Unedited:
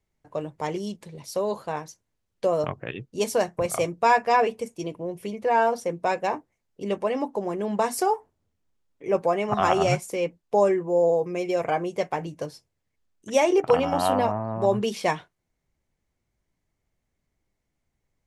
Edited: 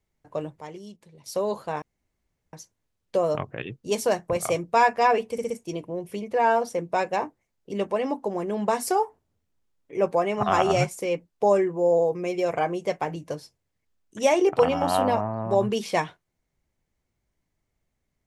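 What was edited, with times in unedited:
0.60–1.26 s: gain -10.5 dB
1.82 s: insert room tone 0.71 s
4.61 s: stutter 0.06 s, 4 plays

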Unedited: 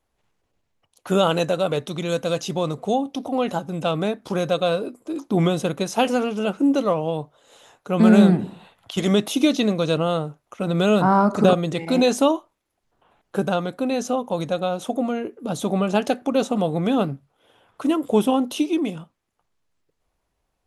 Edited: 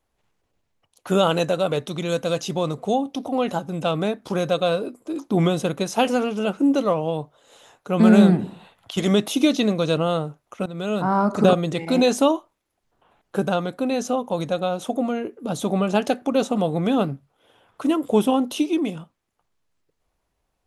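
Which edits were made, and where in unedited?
10.66–11.47 s: fade in, from -14.5 dB

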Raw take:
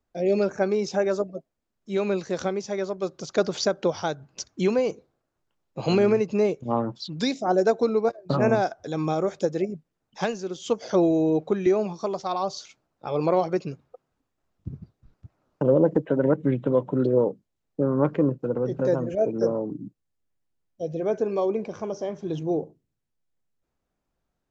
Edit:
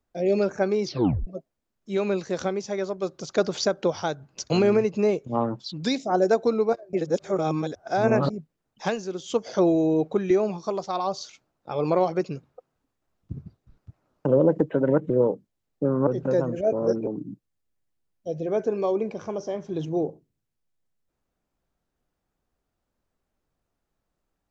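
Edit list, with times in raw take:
0.84 s: tape stop 0.43 s
4.50–5.86 s: delete
8.29–9.66 s: reverse
16.46–17.07 s: delete
18.04–18.61 s: delete
19.27–19.61 s: reverse

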